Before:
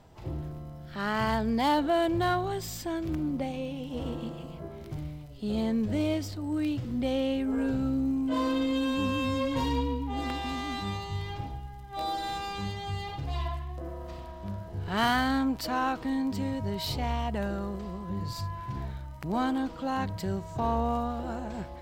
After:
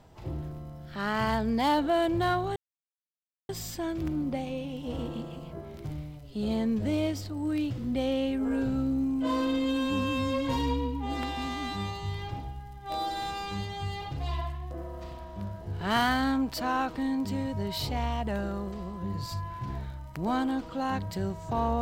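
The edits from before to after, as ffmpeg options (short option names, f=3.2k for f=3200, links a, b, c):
-filter_complex "[0:a]asplit=2[a][b];[a]atrim=end=2.56,asetpts=PTS-STARTPTS,afade=t=out:st=2.556:d=0.004:c=hsin,apad=pad_dur=0.93[c];[b]atrim=start=2.56,asetpts=PTS-STARTPTS,afade=t=in:d=0.004:c=hsin[d];[c][d]concat=n=2:v=0:a=1"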